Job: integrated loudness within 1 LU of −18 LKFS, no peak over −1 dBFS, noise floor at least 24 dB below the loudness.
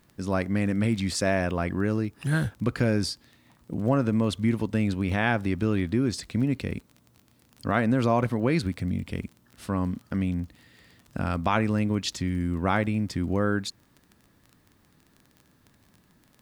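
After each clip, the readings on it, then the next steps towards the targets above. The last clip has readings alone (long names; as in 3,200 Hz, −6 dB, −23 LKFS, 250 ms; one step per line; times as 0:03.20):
crackle rate 20 per second; integrated loudness −27.0 LKFS; sample peak −8.0 dBFS; target loudness −18.0 LKFS
→ click removal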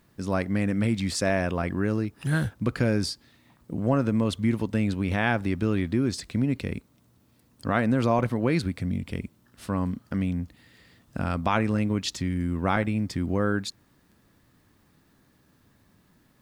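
crackle rate 0.18 per second; integrated loudness −27.0 LKFS; sample peak −8.0 dBFS; target loudness −18.0 LKFS
→ level +9 dB
brickwall limiter −1 dBFS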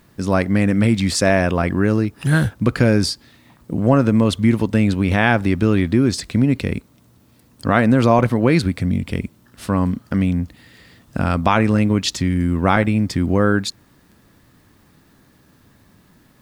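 integrated loudness −18.0 LKFS; sample peak −1.0 dBFS; background noise floor −54 dBFS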